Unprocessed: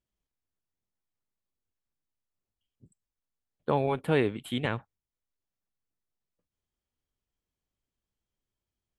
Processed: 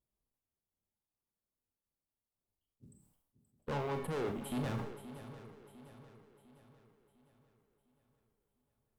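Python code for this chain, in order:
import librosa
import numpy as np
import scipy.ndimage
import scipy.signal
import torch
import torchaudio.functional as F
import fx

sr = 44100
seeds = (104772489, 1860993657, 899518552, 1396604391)

p1 = fx.band_shelf(x, sr, hz=3200.0, db=-10.0, octaves=2.6)
p2 = fx.rider(p1, sr, range_db=10, speed_s=0.5)
p3 = fx.quant_float(p2, sr, bits=4)
p4 = fx.tube_stage(p3, sr, drive_db=36.0, bias=0.45)
p5 = p4 + fx.echo_swing(p4, sr, ms=702, ratio=3, feedback_pct=45, wet_db=-14, dry=0)
p6 = fx.rev_schroeder(p5, sr, rt60_s=0.37, comb_ms=28, drr_db=6.0)
p7 = fx.sustainer(p6, sr, db_per_s=69.0)
y = p7 * librosa.db_to_amplitude(1.0)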